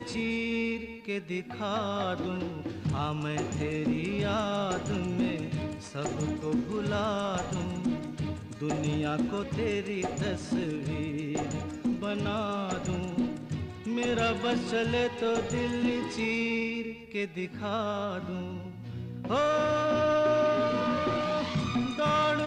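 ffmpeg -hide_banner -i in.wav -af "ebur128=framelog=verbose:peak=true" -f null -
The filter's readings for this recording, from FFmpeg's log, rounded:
Integrated loudness:
  I:         -30.7 LUFS
  Threshold: -40.7 LUFS
Loudness range:
  LRA:         4.5 LU
  Threshold: -50.9 LUFS
  LRA low:   -32.5 LUFS
  LRA high:  -28.1 LUFS
True peak:
  Peak:      -15.9 dBFS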